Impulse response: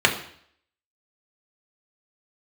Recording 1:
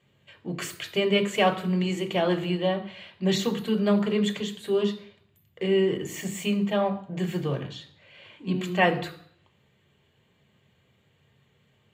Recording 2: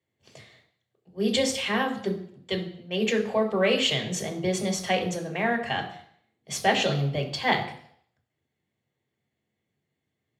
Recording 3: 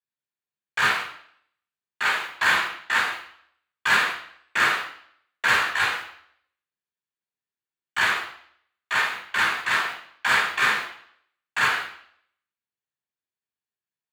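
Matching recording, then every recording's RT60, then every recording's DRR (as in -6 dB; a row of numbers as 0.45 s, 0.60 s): 2; 0.60 s, 0.60 s, 0.60 s; 4.5 dB, 0.5 dB, -9.5 dB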